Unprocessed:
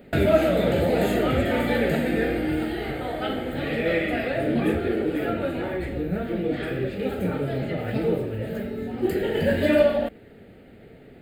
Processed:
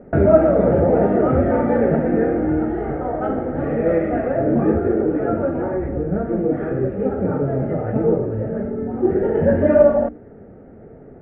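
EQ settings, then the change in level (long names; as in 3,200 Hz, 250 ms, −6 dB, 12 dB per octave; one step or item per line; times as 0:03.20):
low-pass filter 1,300 Hz 24 dB per octave
mains-hum notches 60/120/180/240/300 Hz
+6.5 dB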